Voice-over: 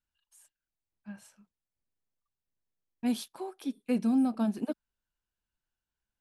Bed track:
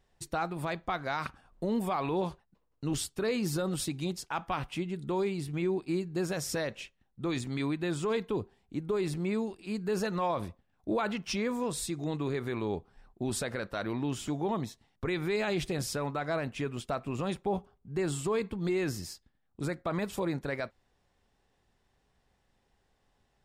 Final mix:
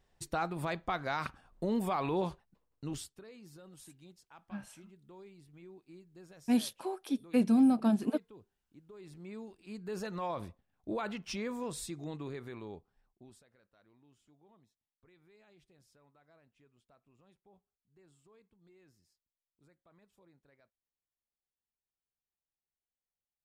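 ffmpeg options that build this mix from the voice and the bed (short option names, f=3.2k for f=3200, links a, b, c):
-filter_complex "[0:a]adelay=3450,volume=1.5dB[a];[1:a]volume=15dB,afade=t=out:st=2.52:d=0.72:silence=0.0891251,afade=t=in:st=8.94:d=1.39:silence=0.149624,afade=t=out:st=11.76:d=1.67:silence=0.0421697[b];[a][b]amix=inputs=2:normalize=0"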